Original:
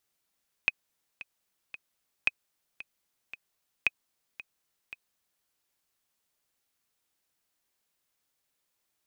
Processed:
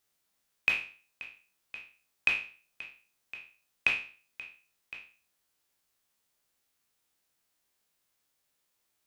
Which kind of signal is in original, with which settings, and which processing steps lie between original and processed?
click track 113 BPM, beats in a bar 3, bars 3, 2,520 Hz, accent 17.5 dB −10 dBFS
peak hold with a decay on every bin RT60 0.41 s

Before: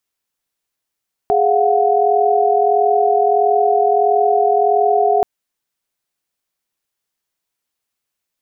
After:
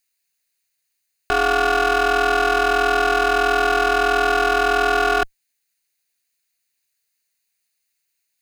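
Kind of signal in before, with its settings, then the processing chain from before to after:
held notes G#4/F5/F#5 sine, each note −15.5 dBFS 3.93 s
lower of the sound and its delayed copy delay 0.45 ms
tilt shelving filter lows −7.5 dB

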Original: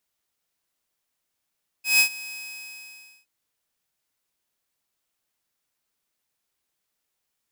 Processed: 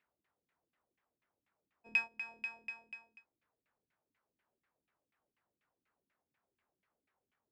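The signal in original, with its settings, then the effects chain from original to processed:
note with an ADSR envelope saw 2,540 Hz, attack 155 ms, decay 91 ms, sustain −20.5 dB, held 0.48 s, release 937 ms −11 dBFS
high-pass filter 45 Hz
downward compressor 4 to 1, threshold −30 dBFS
auto-filter low-pass saw down 4.1 Hz 210–2,400 Hz

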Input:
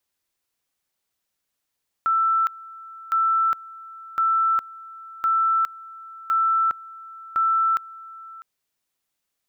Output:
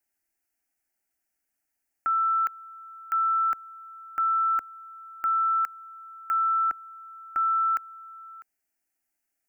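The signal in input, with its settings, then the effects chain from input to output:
tone at two levels in turn 1,330 Hz −17 dBFS, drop 20.5 dB, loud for 0.41 s, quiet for 0.65 s, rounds 6
phaser with its sweep stopped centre 730 Hz, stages 8

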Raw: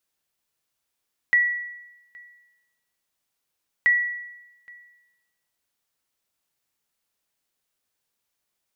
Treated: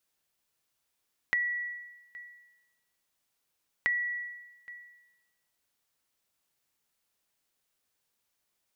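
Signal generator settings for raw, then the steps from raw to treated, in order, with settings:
ping with an echo 1,940 Hz, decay 0.98 s, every 2.53 s, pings 2, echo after 0.82 s, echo −27 dB −12.5 dBFS
downward compressor 4 to 1, threshold −29 dBFS

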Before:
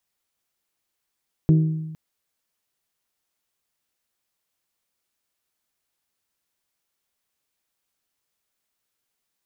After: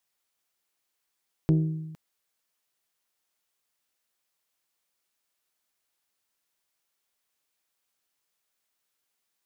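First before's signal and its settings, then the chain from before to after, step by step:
struck glass bell, length 0.46 s, lowest mode 158 Hz, decay 1.18 s, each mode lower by 8.5 dB, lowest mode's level −11 dB
stylus tracing distortion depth 0.1 ms
low-shelf EQ 270 Hz −7.5 dB

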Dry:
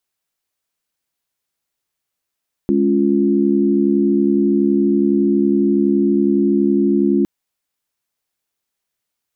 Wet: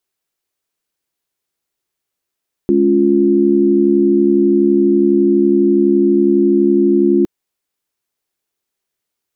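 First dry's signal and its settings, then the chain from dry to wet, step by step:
held notes G#3/C#4/F4 sine, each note −16.5 dBFS 4.56 s
parametric band 380 Hz +6.5 dB 0.57 octaves

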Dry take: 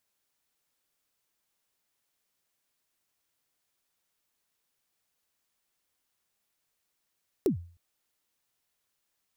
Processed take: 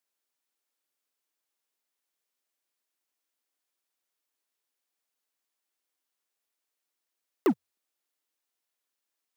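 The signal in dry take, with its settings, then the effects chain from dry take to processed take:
synth kick length 0.31 s, from 440 Hz, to 86 Hz, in 110 ms, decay 0.43 s, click on, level −18.5 dB
Butterworth high-pass 240 Hz 36 dB per octave
leveller curve on the samples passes 3

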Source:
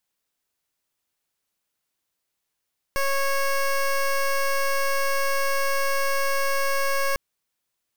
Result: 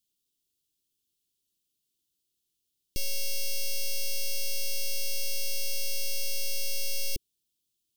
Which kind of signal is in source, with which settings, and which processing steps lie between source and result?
pulse wave 550 Hz, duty 15% −22.5 dBFS 4.20 s
elliptic band-stop filter 380–3,100 Hz, stop band 60 dB

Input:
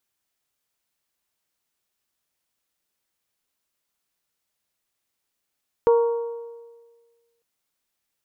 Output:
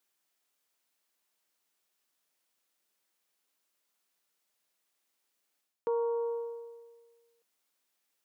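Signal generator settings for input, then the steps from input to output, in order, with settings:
struck metal bell, lowest mode 467 Hz, modes 4, decay 1.52 s, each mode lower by 10 dB, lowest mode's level −12 dB
reversed playback
downward compressor 4 to 1, threshold −31 dBFS
reversed playback
high-pass filter 230 Hz 12 dB per octave

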